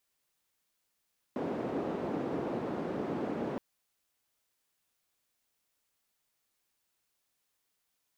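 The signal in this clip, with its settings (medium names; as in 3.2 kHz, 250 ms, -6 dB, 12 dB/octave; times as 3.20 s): noise band 250–360 Hz, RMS -35 dBFS 2.22 s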